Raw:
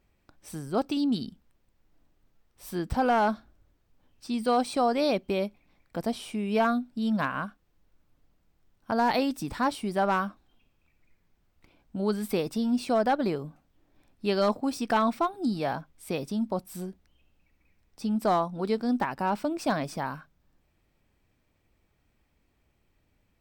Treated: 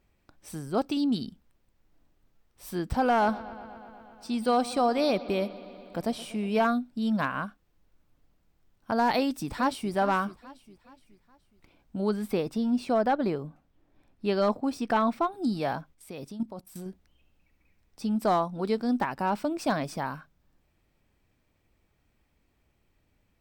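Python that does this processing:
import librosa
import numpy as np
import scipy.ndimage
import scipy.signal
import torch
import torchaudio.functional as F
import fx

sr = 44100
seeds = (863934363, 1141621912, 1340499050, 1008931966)

y = fx.echo_bbd(x, sr, ms=121, stages=4096, feedback_pct=78, wet_db=-18.5, at=(3.2, 6.66), fade=0.02)
y = fx.echo_throw(y, sr, start_s=9.16, length_s=0.76, ms=420, feedback_pct=45, wet_db=-15.0)
y = fx.high_shelf(y, sr, hz=3600.0, db=-7.5, at=(12.09, 15.32))
y = fx.level_steps(y, sr, step_db=13, at=(15.94, 16.86))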